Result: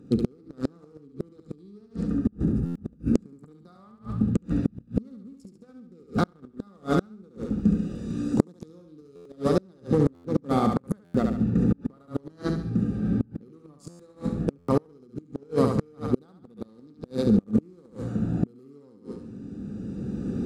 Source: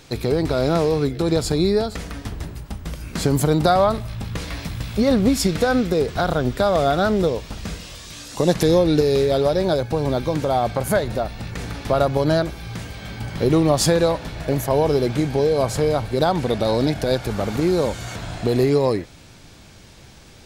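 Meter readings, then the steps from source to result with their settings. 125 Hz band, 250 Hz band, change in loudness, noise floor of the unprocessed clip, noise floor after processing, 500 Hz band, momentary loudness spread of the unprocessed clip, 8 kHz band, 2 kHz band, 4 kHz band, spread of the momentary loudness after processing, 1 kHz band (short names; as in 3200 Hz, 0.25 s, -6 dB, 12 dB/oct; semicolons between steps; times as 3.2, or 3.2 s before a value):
-6.0 dB, -3.5 dB, -7.0 dB, -45 dBFS, -55 dBFS, -12.5 dB, 15 LU, under -20 dB, -15.5 dB, -19.5 dB, 19 LU, -12.5 dB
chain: Wiener smoothing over 41 samples; recorder AGC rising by 12 dB/s; HPF 41 Hz 12 dB/oct; bell 620 Hz -14 dB 0.28 oct; de-hum 81.13 Hz, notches 5; small resonant body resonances 210/1200 Hz, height 15 dB, ringing for 30 ms; on a send: thinning echo 70 ms, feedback 42%, high-pass 370 Hz, level -3.5 dB; on the sum: Schroeder reverb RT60 0.82 s, combs from 29 ms, DRR 20 dB; flipped gate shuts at -5 dBFS, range -35 dB; graphic EQ 250/500/8000 Hz +4/+7/+11 dB; stuck buffer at 2.65/9.15/10.14/11.04/13.89/14.58, samples 512; gain -8.5 dB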